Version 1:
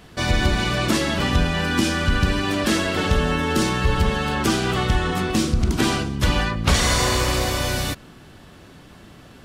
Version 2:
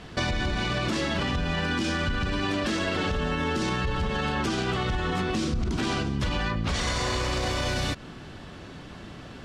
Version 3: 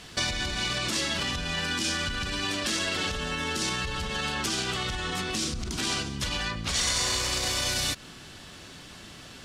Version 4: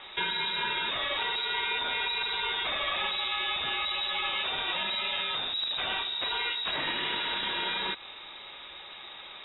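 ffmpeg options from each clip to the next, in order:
ffmpeg -i in.wav -af "lowpass=6300,alimiter=limit=-15.5dB:level=0:latency=1:release=25,acompressor=threshold=-27dB:ratio=6,volume=3dB" out.wav
ffmpeg -i in.wav -af "crystalizer=i=6.5:c=0,volume=-7dB" out.wav
ffmpeg -i in.wav -filter_complex "[0:a]asplit=2[link_01][link_02];[link_02]aeval=exprs='(mod(26.6*val(0)+1,2)-1)/26.6':channel_layout=same,volume=-11dB[link_03];[link_01][link_03]amix=inputs=2:normalize=0,lowpass=frequency=3300:width_type=q:width=0.5098,lowpass=frequency=3300:width_type=q:width=0.6013,lowpass=frequency=3300:width_type=q:width=0.9,lowpass=frequency=3300:width_type=q:width=2.563,afreqshift=-3900" out.wav

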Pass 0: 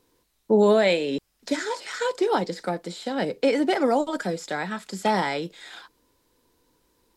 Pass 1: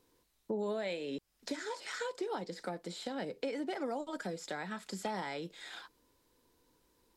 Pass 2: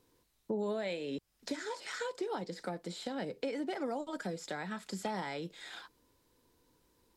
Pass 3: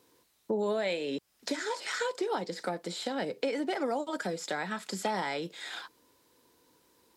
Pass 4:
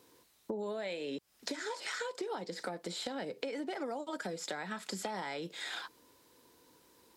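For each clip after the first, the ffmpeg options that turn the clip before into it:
ffmpeg -i in.wav -af "acompressor=threshold=-33dB:ratio=3,volume=-5dB" out.wav
ffmpeg -i in.wav -af "equalizer=frequency=110:width=0.78:gain=4" out.wav
ffmpeg -i in.wav -af "highpass=frequency=300:poles=1,volume=7dB" out.wav
ffmpeg -i in.wav -af "acompressor=threshold=-39dB:ratio=4,volume=2dB" out.wav

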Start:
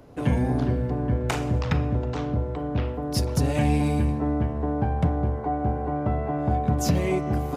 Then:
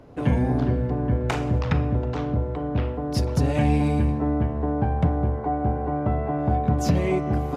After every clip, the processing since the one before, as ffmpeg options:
ffmpeg -i in.wav -af "lowpass=frequency=3700:poles=1,volume=1.5dB" out.wav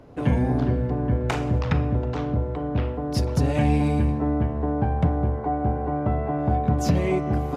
ffmpeg -i in.wav -af anull out.wav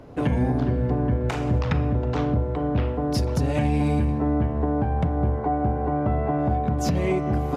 ffmpeg -i in.wav -af "alimiter=limit=-17dB:level=0:latency=1:release=270,volume=3.5dB" out.wav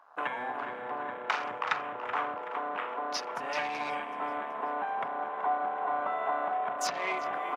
ffmpeg -i in.wav -filter_complex "[0:a]highpass=frequency=1100:width_type=q:width=1.8,asplit=7[link_01][link_02][link_03][link_04][link_05][link_06][link_07];[link_02]adelay=378,afreqshift=-31,volume=-10.5dB[link_08];[link_03]adelay=756,afreqshift=-62,volume=-16.2dB[link_09];[link_04]adelay=1134,afreqshift=-93,volume=-21.9dB[link_10];[link_05]adelay=1512,afreqshift=-124,volume=-27.5dB[link_11];[link_06]adelay=1890,afreqshift=-155,volume=-33.2dB[link_12];[link_07]adelay=2268,afreqshift=-186,volume=-38.9dB[link_13];[link_01][link_08][link_09][link_10][link_11][link_12][link_13]amix=inputs=7:normalize=0,afwtdn=0.00708" out.wav

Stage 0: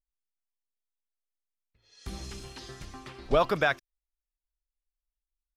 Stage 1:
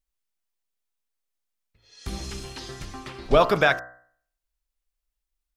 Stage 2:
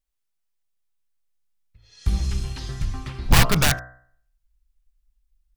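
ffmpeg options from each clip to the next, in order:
ffmpeg -i in.wav -af "bandreject=frequency=62.37:width_type=h:width=4,bandreject=frequency=124.74:width_type=h:width=4,bandreject=frequency=187.11:width_type=h:width=4,bandreject=frequency=249.48:width_type=h:width=4,bandreject=frequency=311.85:width_type=h:width=4,bandreject=frequency=374.22:width_type=h:width=4,bandreject=frequency=436.59:width_type=h:width=4,bandreject=frequency=498.96:width_type=h:width=4,bandreject=frequency=561.33:width_type=h:width=4,bandreject=frequency=623.7:width_type=h:width=4,bandreject=frequency=686.07:width_type=h:width=4,bandreject=frequency=748.44:width_type=h:width=4,bandreject=frequency=810.81:width_type=h:width=4,bandreject=frequency=873.18:width_type=h:width=4,bandreject=frequency=935.55:width_type=h:width=4,bandreject=frequency=997.92:width_type=h:width=4,bandreject=frequency=1060.29:width_type=h:width=4,bandreject=frequency=1122.66:width_type=h:width=4,bandreject=frequency=1185.03:width_type=h:width=4,bandreject=frequency=1247.4:width_type=h:width=4,bandreject=frequency=1309.77:width_type=h:width=4,bandreject=frequency=1372.14:width_type=h:width=4,bandreject=frequency=1434.51:width_type=h:width=4,bandreject=frequency=1496.88:width_type=h:width=4,bandreject=frequency=1559.25:width_type=h:width=4,bandreject=frequency=1621.62:width_type=h:width=4,bandreject=frequency=1683.99:width_type=h:width=4,bandreject=frequency=1746.36:width_type=h:width=4,bandreject=frequency=1808.73:width_type=h:width=4,bandreject=frequency=1871.1:width_type=h:width=4,bandreject=frequency=1933.47:width_type=h:width=4,bandreject=frequency=1995.84:width_type=h:width=4,volume=6.5dB" out.wav
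ffmpeg -i in.wav -af "aeval=exprs='(mod(3.98*val(0)+1,2)-1)/3.98':channel_layout=same,asubboost=boost=8.5:cutoff=150" out.wav

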